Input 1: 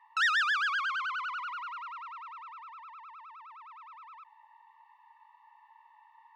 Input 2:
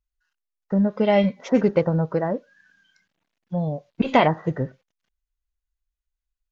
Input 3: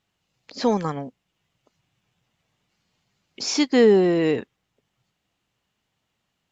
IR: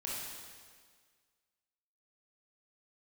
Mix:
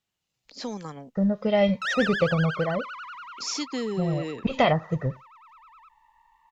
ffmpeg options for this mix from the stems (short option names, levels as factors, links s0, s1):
-filter_complex "[0:a]highshelf=f=6700:g=-9.5,adelay=1650,volume=0.708[s0];[1:a]lowshelf=f=180:g=7.5,aecho=1:1:1.6:0.45,adelay=450,volume=0.501[s1];[2:a]acrossover=split=270|3000[s2][s3][s4];[s3]acompressor=threshold=0.0708:ratio=6[s5];[s2][s5][s4]amix=inputs=3:normalize=0,volume=0.299[s6];[s0][s1][s6]amix=inputs=3:normalize=0,highshelf=f=3700:g=8.5"